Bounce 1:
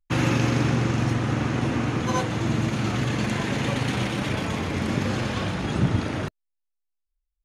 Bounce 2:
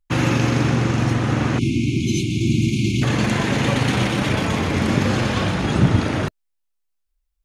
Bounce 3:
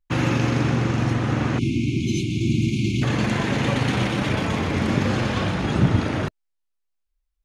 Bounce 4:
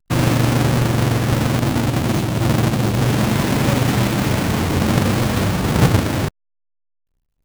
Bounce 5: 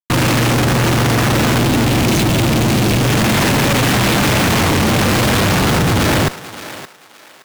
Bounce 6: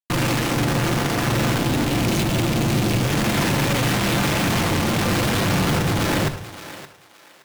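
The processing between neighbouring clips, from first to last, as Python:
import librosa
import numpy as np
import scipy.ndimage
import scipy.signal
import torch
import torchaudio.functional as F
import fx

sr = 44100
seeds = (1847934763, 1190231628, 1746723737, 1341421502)

y1 = fx.spec_erase(x, sr, start_s=1.58, length_s=1.45, low_hz=400.0, high_hz=2100.0)
y1 = fx.rider(y1, sr, range_db=10, speed_s=2.0)
y1 = y1 * 10.0 ** (5.5 / 20.0)
y2 = fx.high_shelf(y1, sr, hz=7100.0, db=-7.0)
y2 = y2 * 10.0 ** (-2.5 / 20.0)
y3 = fx.halfwave_hold(y2, sr)
y4 = fx.fuzz(y3, sr, gain_db=41.0, gate_db=-47.0)
y4 = fx.echo_thinned(y4, sr, ms=570, feedback_pct=28, hz=510.0, wet_db=-12.5)
y5 = fx.room_shoebox(y4, sr, seeds[0], volume_m3=720.0, walls='furnished', distance_m=0.81)
y5 = y5 * 10.0 ** (-7.5 / 20.0)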